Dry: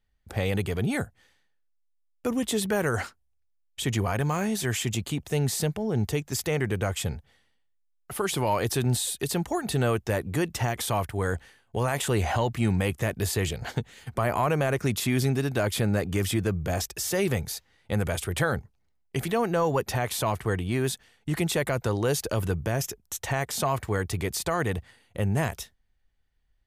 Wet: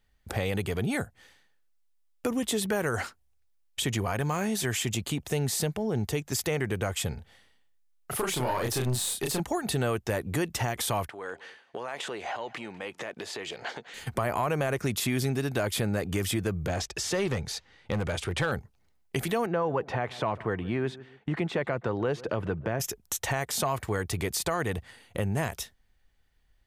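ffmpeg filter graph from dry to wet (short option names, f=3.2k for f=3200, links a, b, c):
-filter_complex "[0:a]asettb=1/sr,asplit=3[a][b][c];[a]atrim=end=7.144[d];[b]atrim=start=7.14:end=9.4,asetpts=PTS-STARTPTS,afade=t=in:d=0.004:c=qsin,afade=t=out:st=2.256:d=0.004:c=qsin,asplit=2[e][f];[f]adelay=32,volume=-3dB[g];[e][g]amix=inputs=2:normalize=0,atrim=end_sample=99666,aeval=exprs='(tanh(7.08*val(0)+0.55)-tanh(0.55))/7.08':c=same[h];[c]atrim=start=9.396[i];[d][h]acrossfade=d=0.004:c1=hsin:c2=qsin[j];[j][i]acrossfade=d=0.004:c1=qsin:c2=hsin,asettb=1/sr,asplit=3[k][l][m];[k]atrim=end=11.084[n];[l]atrim=start=11.08:end=13.94,asetpts=PTS-STARTPTS,afade=t=in:d=0.004:c=qsin,afade=t=out:st=2.856:d=0.004:c=qsin,acompressor=threshold=-34dB:ratio=6:attack=3.2:release=140:knee=1:detection=peak,highpass=360,lowpass=4.7k,aecho=1:1:199:0.0794,atrim=end_sample=126126[o];[m]atrim=start=13.936[p];[n][o]acrossfade=d=0.004:c1=hsin:c2=qsin[q];[q][p]acrossfade=d=0.004:c1=qsin:c2=hsin,asettb=1/sr,asplit=3[r][s][t];[r]atrim=end=16.674[u];[s]atrim=start=16.67:end=18.52,asetpts=PTS-STARTPTS,afade=t=in:d=0.004:c=qsin,afade=t=out:st=1.846:d=0.004:c=qsin,lowpass=5.8k,bandreject=f=670:w=17,aeval=exprs='clip(val(0),-1,0.0891)':c=same[v];[t]atrim=start=18.516[w];[u][v]acrossfade=d=0.004:c1=hsin:c2=qsin[x];[x][w]acrossfade=d=0.004:c1=qsin:c2=hsin,asettb=1/sr,asplit=3[y][z][aa];[y]atrim=end=19.464[ab];[z]atrim=start=19.46:end=22.8,asetpts=PTS-STARTPTS,afade=t=in:d=0.004:c=qsin,afade=t=out:st=3.336:d=0.004:c=qsin,highpass=110,lowpass=2.3k,asplit=2[ac][ad];[ad]adelay=146,lowpass=f=1.3k:p=1,volume=-20.5dB,asplit=2[ae][af];[af]adelay=146,lowpass=f=1.3k:p=1,volume=0.24[ag];[ac][ae][ag]amix=inputs=3:normalize=0,atrim=end_sample=147294[ah];[aa]atrim=start=22.796[ai];[ab][ah]acrossfade=d=0.004:c1=hsin:c2=qsin[aj];[aj][ai]acrossfade=d=0.004:c1=qsin:c2=hsin,lowshelf=f=190:g=-3.5,acompressor=threshold=-39dB:ratio=2,volume=7dB"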